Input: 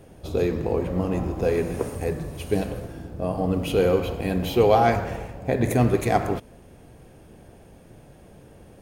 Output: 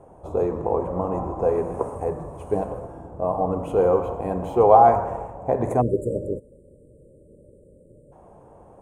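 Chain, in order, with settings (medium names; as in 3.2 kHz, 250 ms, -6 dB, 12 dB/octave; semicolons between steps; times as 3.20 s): spectral selection erased 5.81–8.12 s, 620–7000 Hz; FFT filter 260 Hz 0 dB, 1 kHz +14 dB, 1.7 kHz -6 dB, 4.7 kHz -20 dB, 7.9 kHz -2 dB, 14 kHz -20 dB; trim -4.5 dB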